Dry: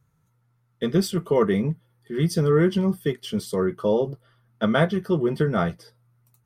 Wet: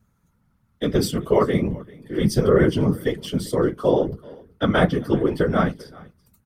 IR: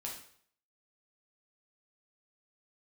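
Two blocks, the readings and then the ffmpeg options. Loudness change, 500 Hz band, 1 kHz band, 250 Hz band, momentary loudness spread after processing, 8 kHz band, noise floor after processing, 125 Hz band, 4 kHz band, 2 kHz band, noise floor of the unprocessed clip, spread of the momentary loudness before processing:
+2.0 dB, +2.5 dB, +3.5 dB, +2.0 dB, 10 LU, +2.5 dB, -66 dBFS, +1.0 dB, +2.5 dB, +2.5 dB, -67 dBFS, 10 LU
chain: -af "bandreject=f=50:t=h:w=6,bandreject=f=100:t=h:w=6,bandreject=f=150:t=h:w=6,bandreject=f=200:t=h:w=6,bandreject=f=250:t=h:w=6,bandreject=f=300:t=h:w=6,bandreject=f=350:t=h:w=6,bandreject=f=400:t=h:w=6,aecho=1:1:389:0.075,afftfilt=real='hypot(re,im)*cos(2*PI*random(0))':imag='hypot(re,im)*sin(2*PI*random(1))':win_size=512:overlap=0.75,volume=8.5dB"

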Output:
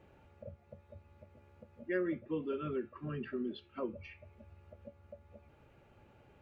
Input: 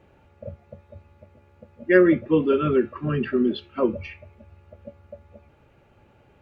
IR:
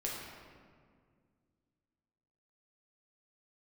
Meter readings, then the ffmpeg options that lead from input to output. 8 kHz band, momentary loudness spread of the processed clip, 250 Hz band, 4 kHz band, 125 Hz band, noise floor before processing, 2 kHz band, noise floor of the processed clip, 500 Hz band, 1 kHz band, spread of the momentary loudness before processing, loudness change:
n/a, 21 LU, -17.5 dB, -15.5 dB, -15.5 dB, -58 dBFS, -18.0 dB, -65 dBFS, -17.5 dB, -16.0 dB, 20 LU, -18.0 dB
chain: -af "acompressor=threshold=-50dB:ratio=1.5,volume=-5.5dB"

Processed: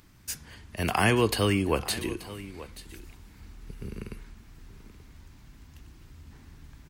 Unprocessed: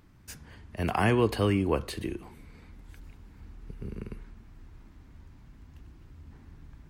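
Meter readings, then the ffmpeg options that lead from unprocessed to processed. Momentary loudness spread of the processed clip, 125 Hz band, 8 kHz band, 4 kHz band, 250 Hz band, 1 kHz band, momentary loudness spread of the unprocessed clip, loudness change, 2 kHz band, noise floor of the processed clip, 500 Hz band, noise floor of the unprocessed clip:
21 LU, 0.0 dB, +11.0 dB, +8.0 dB, +0.5 dB, +1.5 dB, 22 LU, +1.0 dB, +5.0 dB, -53 dBFS, +0.5 dB, -55 dBFS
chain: -filter_complex "[0:a]highshelf=f=2.4k:g=12,asplit=2[a][b];[b]aecho=0:1:881:0.15[c];[a][c]amix=inputs=2:normalize=0"

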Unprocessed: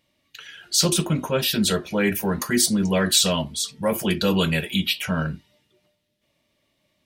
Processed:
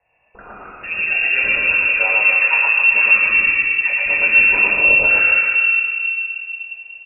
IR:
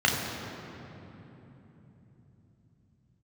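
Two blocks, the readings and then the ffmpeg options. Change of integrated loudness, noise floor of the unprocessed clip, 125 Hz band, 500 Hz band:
+9.0 dB, -71 dBFS, under -15 dB, -5.0 dB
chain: -filter_complex "[0:a]lowshelf=f=300:g=-7,acompressor=threshold=-30dB:ratio=2.5,aecho=1:1:113.7|265.3:0.891|0.501[a];[1:a]atrim=start_sample=2205,asetrate=66150,aresample=44100[b];[a][b]afir=irnorm=-1:irlink=0,lowpass=f=2.5k:t=q:w=0.5098,lowpass=f=2.5k:t=q:w=0.6013,lowpass=f=2.5k:t=q:w=0.9,lowpass=f=2.5k:t=q:w=2.563,afreqshift=-2900,volume=-3dB"

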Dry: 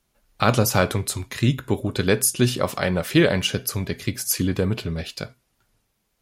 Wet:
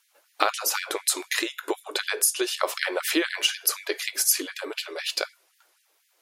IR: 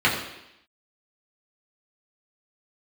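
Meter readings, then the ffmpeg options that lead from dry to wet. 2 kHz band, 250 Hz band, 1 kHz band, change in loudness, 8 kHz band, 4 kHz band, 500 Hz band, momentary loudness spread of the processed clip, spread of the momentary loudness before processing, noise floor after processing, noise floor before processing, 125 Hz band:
-0.5 dB, -11.0 dB, -2.5 dB, -3.5 dB, +1.5 dB, +1.5 dB, -7.5 dB, 8 LU, 9 LU, -68 dBFS, -72 dBFS, under -40 dB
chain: -af "asubboost=boost=4.5:cutoff=88,acompressor=threshold=-24dB:ratio=20,afftfilt=real='re*gte(b*sr/1024,260*pow(1700/260,0.5+0.5*sin(2*PI*4*pts/sr)))':imag='im*gte(b*sr/1024,260*pow(1700/260,0.5+0.5*sin(2*PI*4*pts/sr)))':win_size=1024:overlap=0.75,volume=7.5dB"

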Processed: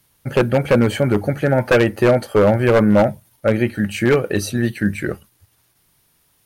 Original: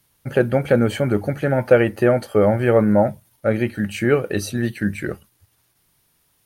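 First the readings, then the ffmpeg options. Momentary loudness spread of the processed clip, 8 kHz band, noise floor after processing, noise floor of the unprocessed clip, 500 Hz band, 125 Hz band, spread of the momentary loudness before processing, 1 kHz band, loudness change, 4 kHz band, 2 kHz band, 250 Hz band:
8 LU, +3.5 dB, -61 dBFS, -64 dBFS, +1.5 dB, +2.5 dB, 9 LU, +3.0 dB, +2.0 dB, +5.0 dB, +3.5 dB, +2.5 dB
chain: -af "aeval=exprs='0.335*(abs(mod(val(0)/0.335+3,4)-2)-1)':c=same,volume=3dB"

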